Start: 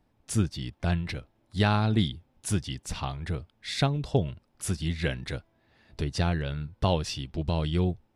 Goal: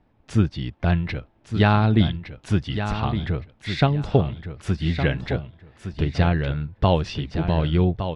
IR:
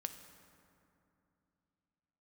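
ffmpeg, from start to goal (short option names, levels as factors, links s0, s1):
-filter_complex "[0:a]lowpass=3000,asplit=2[s0][s1];[s1]aecho=0:1:1163|2326|3489:0.355|0.071|0.0142[s2];[s0][s2]amix=inputs=2:normalize=0,volume=2.11"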